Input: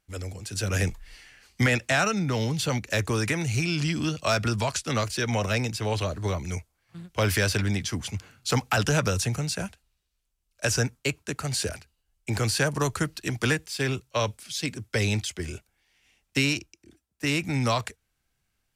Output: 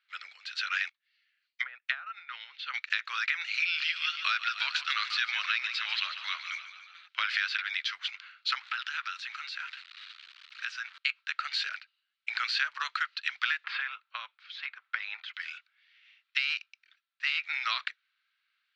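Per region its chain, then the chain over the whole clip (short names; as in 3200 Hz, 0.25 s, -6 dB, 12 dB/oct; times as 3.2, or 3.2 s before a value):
0.89–2.74 treble ducked by the level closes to 580 Hz, closed at -18 dBFS + high shelf 2400 Hz +8.5 dB + upward expander 2.5:1, over -40 dBFS
3.6–7.08 HPF 1400 Hz 6 dB/oct + sample leveller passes 1 + frequency-shifting echo 0.144 s, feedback 62%, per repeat +37 Hz, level -12 dB
8.55–10.98 zero-crossing step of -39 dBFS + steep high-pass 800 Hz + compressor 3:1, threshold -37 dBFS
13.64–15.34 band-pass 770 Hz, Q 1.2 + three-band squash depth 100%
16.39–17.49 self-modulated delay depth 0.059 ms + bell 560 Hz +4 dB 0.6 oct
whole clip: elliptic band-pass 1300–4100 Hz, stop band 70 dB; compressor, threshold -31 dBFS; gain +5.5 dB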